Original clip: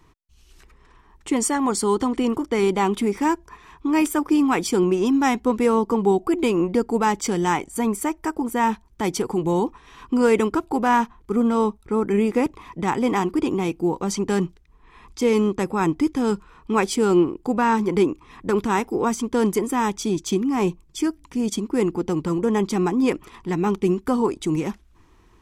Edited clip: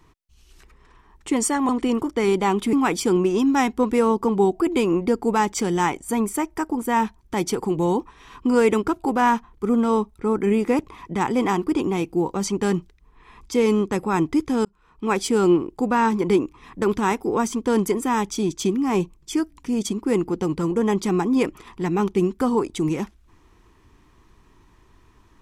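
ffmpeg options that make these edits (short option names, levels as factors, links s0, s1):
-filter_complex "[0:a]asplit=4[s0][s1][s2][s3];[s0]atrim=end=1.692[s4];[s1]atrim=start=2.038:end=3.082[s5];[s2]atrim=start=4.398:end=16.32,asetpts=PTS-STARTPTS,afade=t=out:st=11.918:d=0.004:c=hsin[s6];[s3]atrim=start=16.32,asetpts=PTS-STARTPTS,afade=t=in:d=0.58[s7];[s4][s5]acrossfade=d=0.004:c1=hsin:c2=hsin[s8];[s6][s7]concat=n=2:v=0:a=1[s9];[s8][s9]acrossfade=d=0.004:c1=hsin:c2=hsin"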